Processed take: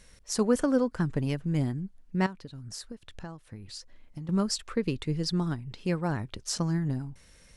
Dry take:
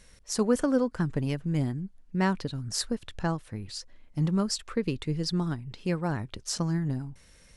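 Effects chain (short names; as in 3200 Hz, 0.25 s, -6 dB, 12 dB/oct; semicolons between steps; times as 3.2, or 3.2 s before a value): 2.26–4.29 compressor 6:1, threshold -39 dBFS, peak gain reduction 15.5 dB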